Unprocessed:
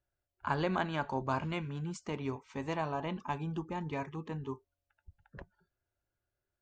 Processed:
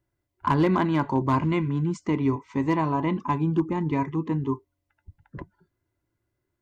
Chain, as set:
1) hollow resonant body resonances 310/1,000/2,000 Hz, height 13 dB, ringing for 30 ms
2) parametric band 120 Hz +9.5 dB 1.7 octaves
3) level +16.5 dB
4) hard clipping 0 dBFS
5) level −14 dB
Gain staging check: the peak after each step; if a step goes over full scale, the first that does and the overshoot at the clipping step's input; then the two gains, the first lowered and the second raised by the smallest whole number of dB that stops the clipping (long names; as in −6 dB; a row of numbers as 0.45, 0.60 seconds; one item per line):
−12.0, −11.5, +5.0, 0.0, −14.0 dBFS
step 3, 5.0 dB
step 3 +11.5 dB, step 5 −9 dB